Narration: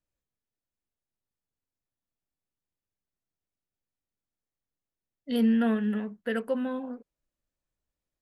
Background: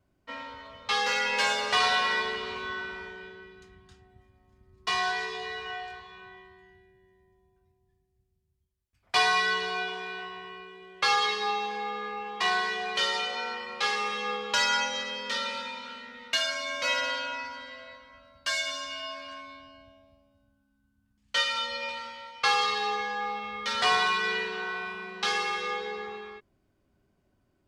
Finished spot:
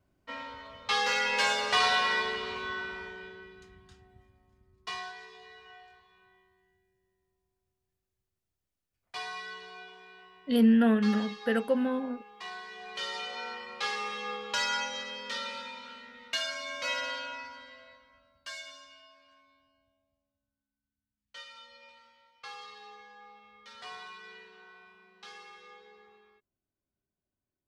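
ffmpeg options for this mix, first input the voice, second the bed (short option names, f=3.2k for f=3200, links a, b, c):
-filter_complex "[0:a]adelay=5200,volume=2dB[a];[1:a]volume=9.5dB,afade=t=out:st=4.21:d=0.92:silence=0.188365,afade=t=in:st=12.67:d=0.78:silence=0.298538,afade=t=out:st=17.19:d=1.9:silence=0.16788[b];[a][b]amix=inputs=2:normalize=0"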